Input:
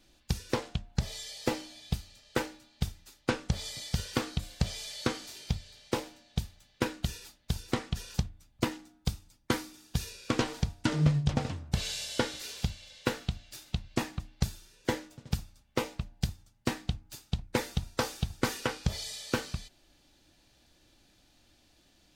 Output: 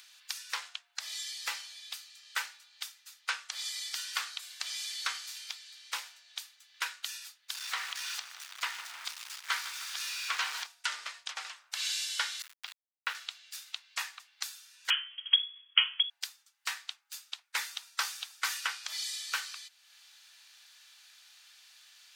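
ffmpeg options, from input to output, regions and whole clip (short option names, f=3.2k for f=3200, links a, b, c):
-filter_complex "[0:a]asettb=1/sr,asplit=3[a][b][c];[a]atrim=end=7.544[d];[b]atrim=start=7.54:end=10.67,asetpts=PTS-STARTPTS,afade=t=in:d=0.004:c=qsin,afade=t=out:st=3.126:d=0.004:c=qsin,aeval=exprs='val(0)+0.5*0.0211*sgn(val(0))':c=same,highshelf=f=7k:g=-11,aecho=1:1:155|310|465|620|775|930:0.211|0.125|0.0736|0.0434|0.0256|0.0151,atrim=end_sample=138033[e];[c]atrim=start=10.666[f];[d][e]acrossfade=d=0.004:c1=hsin:c2=qsin[g];[g][f]acrossfade=d=0.004:c1=qsin:c2=hsin,asettb=1/sr,asplit=3[h][i][j];[h]atrim=end=12.424[k];[i]atrim=start=12.42:end=13.15,asetpts=PTS-STARTPTS,afade=t=in:d=0.004:c=qsin,afade=t=out:st=0.726:d=0.004:c=qsin,lowpass=5.9k,aeval=exprs='val(0)*gte(abs(val(0)),0.0168)':c=same,acrossover=split=3800[l][m];[m]acompressor=threshold=-51dB:ratio=4:attack=1:release=60[n];[l][n]amix=inputs=2:normalize=0[o];[j]atrim=start=13.146[p];[k][o]acrossfade=d=0.004:c1=hsin:c2=qsin[q];[q][p]acrossfade=d=0.004:c1=qsin:c2=hsin,asettb=1/sr,asplit=3[r][s][t];[r]atrim=end=14.904[u];[s]atrim=start=14.9:end=16.1,asetpts=PTS-STARTPTS,afade=t=in:d=0.004:c=qsin,afade=t=out:st=1.196:d=0.004:c=qsin,lowpass=f=2.9k:t=q:w=0.5098,lowpass=f=2.9k:t=q:w=0.6013,lowpass=f=2.9k:t=q:w=0.9,lowpass=f=2.9k:t=q:w=2.563,afreqshift=-3400,tiltshelf=f=690:g=-3.5[v];[t]atrim=start=16.096[w];[u][v]acrossfade=d=0.004:c1=hsin:c2=qsin[x];[x][w]acrossfade=d=0.004:c1=qsin:c2=hsin,highpass=f=1.2k:w=0.5412,highpass=f=1.2k:w=1.3066,acompressor=mode=upward:threshold=-52dB:ratio=2.5,volume=3dB"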